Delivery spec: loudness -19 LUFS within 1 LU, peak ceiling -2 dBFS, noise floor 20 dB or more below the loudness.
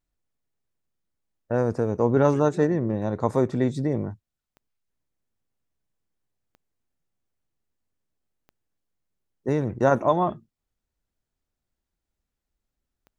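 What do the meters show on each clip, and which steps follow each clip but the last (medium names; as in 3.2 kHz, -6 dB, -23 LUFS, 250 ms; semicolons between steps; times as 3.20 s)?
clicks found 4; loudness -24.0 LUFS; peak level -6.0 dBFS; loudness target -19.0 LUFS
-> de-click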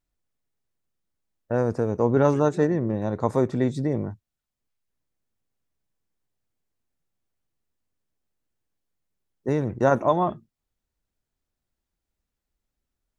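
clicks found 0; loudness -24.0 LUFS; peak level -6.0 dBFS; loudness target -19.0 LUFS
-> trim +5 dB; peak limiter -2 dBFS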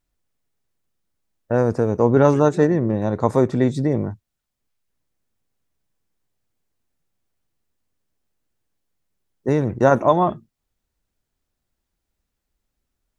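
loudness -19.0 LUFS; peak level -2.0 dBFS; noise floor -80 dBFS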